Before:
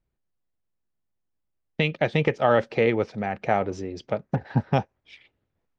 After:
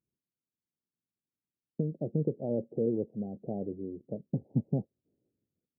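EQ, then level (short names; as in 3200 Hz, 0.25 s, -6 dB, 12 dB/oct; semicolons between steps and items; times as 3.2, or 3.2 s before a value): Gaussian blur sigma 22 samples; HPF 180 Hz 12 dB/oct; 0.0 dB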